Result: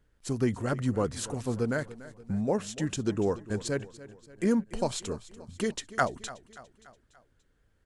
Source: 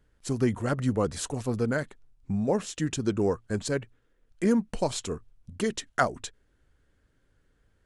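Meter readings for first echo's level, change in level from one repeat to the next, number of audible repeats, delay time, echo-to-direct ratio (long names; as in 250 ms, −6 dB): −17.0 dB, −6.0 dB, 4, 289 ms, −15.5 dB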